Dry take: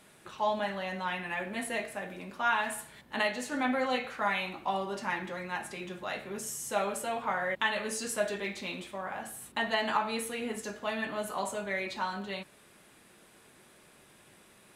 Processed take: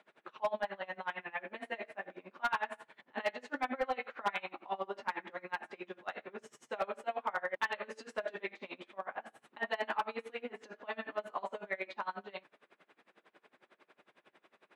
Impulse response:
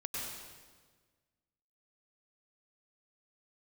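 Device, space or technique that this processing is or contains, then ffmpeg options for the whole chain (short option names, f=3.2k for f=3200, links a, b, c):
helicopter radio: -af "highpass=350,lowpass=2.5k,aeval=exprs='val(0)*pow(10,-26*(0.5-0.5*cos(2*PI*11*n/s))/20)':c=same,asoftclip=type=hard:threshold=-27dB,volume=2dB"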